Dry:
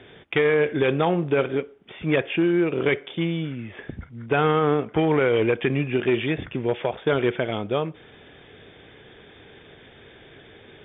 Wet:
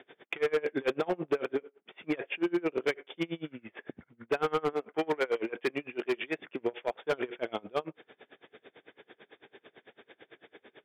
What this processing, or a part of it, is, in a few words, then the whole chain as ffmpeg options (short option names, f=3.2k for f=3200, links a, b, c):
helicopter radio: -filter_complex "[0:a]highpass=300,lowpass=2.9k,aeval=exprs='val(0)*pow(10,-30*(0.5-0.5*cos(2*PI*9*n/s))/20)':c=same,asoftclip=type=hard:threshold=-21.5dB,asettb=1/sr,asplit=3[a][b][c];[a]atrim=end=4.734[d];[b]atrim=start=4.73:end=6.61,asetpts=PTS-STARTPTS,afade=t=in:d=0.004:c=qsin,afade=t=out:st=1.876:d=0.004:c=qsin,highpass=f=270:p=1[e];[c]atrim=start=6.606[f];[d][e]acrossfade=d=0.004:c1=hsin:c2=qsin[g];[g][f]acrossfade=d=0.004:c1=qsin:c2=hsin"